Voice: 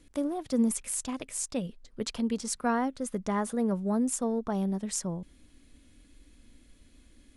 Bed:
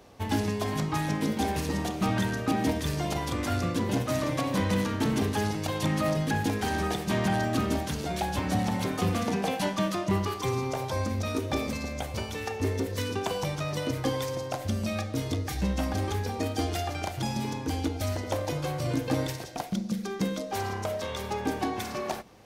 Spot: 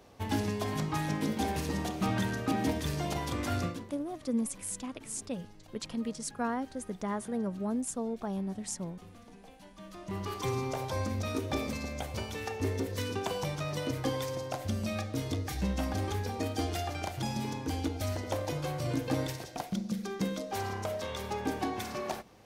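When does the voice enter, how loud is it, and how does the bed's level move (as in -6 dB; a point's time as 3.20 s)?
3.75 s, -5.0 dB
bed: 3.65 s -3.5 dB
3.96 s -25.5 dB
9.70 s -25.5 dB
10.37 s -3.5 dB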